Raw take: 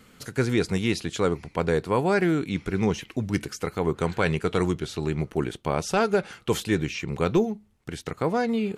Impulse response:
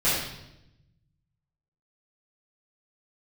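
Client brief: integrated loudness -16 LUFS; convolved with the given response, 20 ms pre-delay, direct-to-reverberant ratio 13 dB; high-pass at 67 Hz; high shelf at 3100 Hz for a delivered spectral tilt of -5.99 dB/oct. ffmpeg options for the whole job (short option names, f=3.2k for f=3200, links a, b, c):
-filter_complex "[0:a]highpass=67,highshelf=f=3.1k:g=-4.5,asplit=2[a][b];[1:a]atrim=start_sample=2205,adelay=20[c];[b][c]afir=irnorm=-1:irlink=0,volume=-27.5dB[d];[a][d]amix=inputs=2:normalize=0,volume=10dB"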